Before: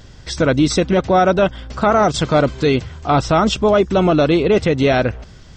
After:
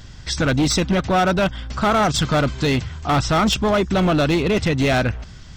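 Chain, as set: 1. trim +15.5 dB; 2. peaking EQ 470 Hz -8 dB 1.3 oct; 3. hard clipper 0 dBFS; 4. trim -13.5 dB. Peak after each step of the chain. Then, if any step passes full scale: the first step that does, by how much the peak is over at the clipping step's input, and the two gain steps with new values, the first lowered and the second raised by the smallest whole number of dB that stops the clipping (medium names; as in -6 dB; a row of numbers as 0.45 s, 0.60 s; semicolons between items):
+11.5 dBFS, +9.0 dBFS, 0.0 dBFS, -13.5 dBFS; step 1, 9.0 dB; step 1 +6.5 dB, step 4 -4.5 dB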